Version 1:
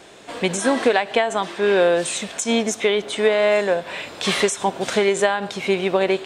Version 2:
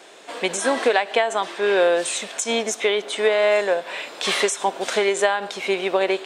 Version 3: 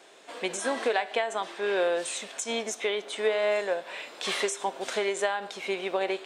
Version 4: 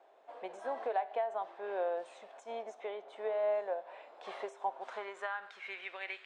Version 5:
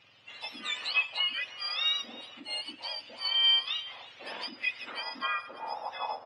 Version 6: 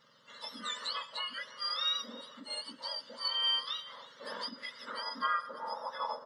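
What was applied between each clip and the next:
high-pass filter 360 Hz 12 dB per octave
flanger 0.43 Hz, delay 7.3 ms, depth 2.2 ms, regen +87%; level −3.5 dB
band-pass filter sweep 730 Hz → 2,100 Hz, 0:04.58–0:05.92; level −3 dB
frequency axis turned over on the octave scale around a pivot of 1,400 Hz; single-tap delay 321 ms −19.5 dB; level +8.5 dB
phaser with its sweep stopped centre 500 Hz, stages 8; level +3 dB

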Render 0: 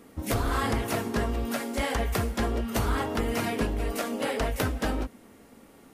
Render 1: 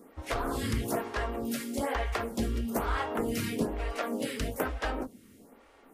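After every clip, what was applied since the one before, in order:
phaser with staggered stages 1.1 Hz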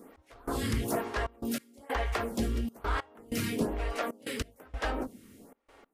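gate pattern "x..xxxxx." 95 BPM −24 dB
in parallel at −8.5 dB: soft clipping −34.5 dBFS, distortion −8 dB
on the sum: level −1 dB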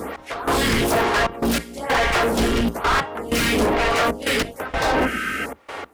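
sub-octave generator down 2 octaves, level +3 dB
mid-hump overdrive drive 31 dB, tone 3,800 Hz, clips at −15.5 dBFS
healed spectral selection 0:04.82–0:05.43, 1,200–3,300 Hz before
level +4 dB

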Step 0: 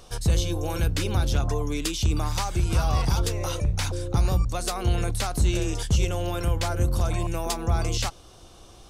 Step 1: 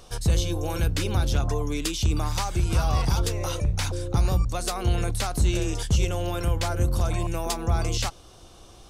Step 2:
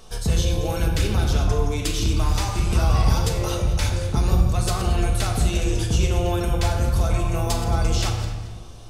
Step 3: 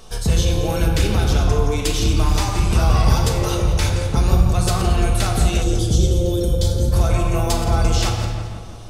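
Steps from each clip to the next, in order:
no processing that can be heard
feedback delay that plays each chunk backwards 113 ms, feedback 46%, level −11.5 dB; rectangular room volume 1,000 cubic metres, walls mixed, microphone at 1.5 metres
gain on a spectral selection 0:05.63–0:06.92, 610–3,000 Hz −17 dB; tape delay 168 ms, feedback 66%, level −8 dB, low-pass 2,400 Hz; level +3.5 dB

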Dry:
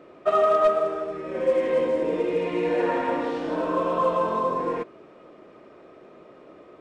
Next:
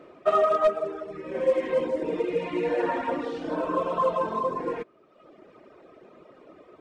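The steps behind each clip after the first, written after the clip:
reverb reduction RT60 1.1 s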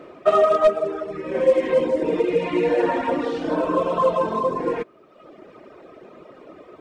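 dynamic equaliser 1,300 Hz, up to −4 dB, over −33 dBFS, Q 0.89
level +7 dB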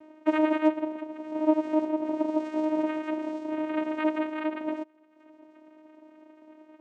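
channel vocoder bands 4, saw 310 Hz
level −6.5 dB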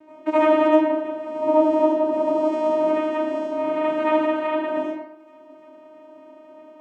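convolution reverb RT60 0.80 s, pre-delay 65 ms, DRR −9 dB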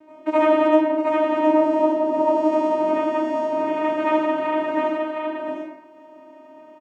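single-tap delay 714 ms −3.5 dB

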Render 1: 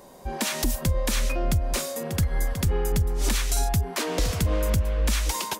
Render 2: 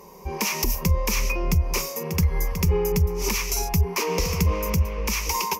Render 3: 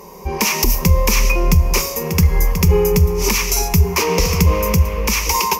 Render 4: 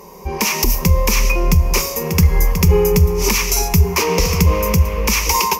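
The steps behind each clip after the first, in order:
EQ curve with evenly spaced ripples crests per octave 0.8, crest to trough 14 dB
dense smooth reverb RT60 1.3 s, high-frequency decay 0.95×, DRR 14 dB; level +8 dB
automatic gain control; level −1 dB

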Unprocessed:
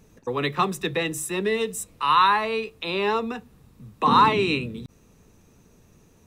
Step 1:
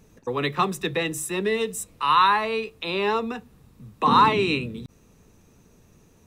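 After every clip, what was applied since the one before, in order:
no processing that can be heard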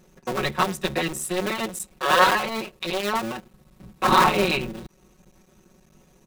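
sub-harmonics by changed cycles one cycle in 2, muted
comb filter 5.4 ms, depth 97%

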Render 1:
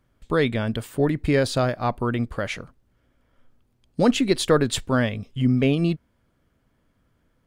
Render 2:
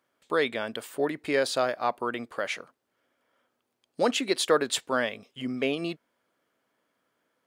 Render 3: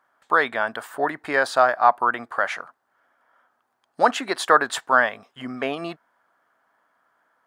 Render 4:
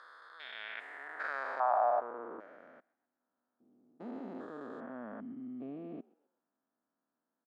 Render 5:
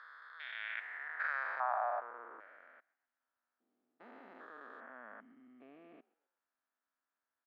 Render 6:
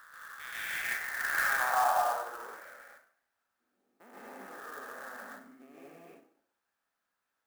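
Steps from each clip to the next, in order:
high-pass filter 430 Hz 12 dB per octave; level −1.5 dB
flat-topped bell 1,100 Hz +13.5 dB; level −1 dB
spectrum averaged block by block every 400 ms; echo with shifted repeats 130 ms, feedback 43%, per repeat +67 Hz, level −23.5 dB; band-pass filter sweep 5,000 Hz → 240 Hz, 0:00.21–0:02.72; level −3.5 dB
resonant band-pass 1,900 Hz, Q 1.5; level +3.5 dB
dense smooth reverb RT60 0.51 s, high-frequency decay 0.8×, pre-delay 120 ms, DRR −7.5 dB; converter with an unsteady clock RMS 0.03 ms

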